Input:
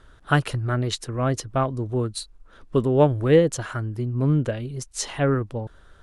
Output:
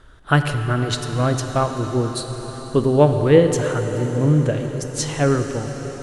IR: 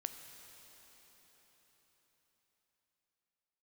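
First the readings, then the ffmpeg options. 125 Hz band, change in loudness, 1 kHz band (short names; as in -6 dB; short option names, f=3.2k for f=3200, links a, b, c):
+4.0 dB, +4.0 dB, +4.0 dB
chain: -filter_complex "[1:a]atrim=start_sample=2205,asetrate=34839,aresample=44100[a];[0:a][a]afir=irnorm=-1:irlink=0,volume=4.5dB"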